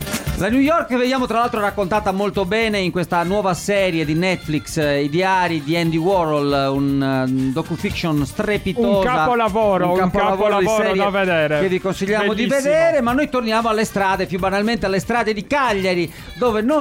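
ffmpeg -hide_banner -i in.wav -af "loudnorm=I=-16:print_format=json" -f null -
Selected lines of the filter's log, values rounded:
"input_i" : "-18.3",
"input_tp" : "-8.1",
"input_lra" : "1.9",
"input_thresh" : "-28.3",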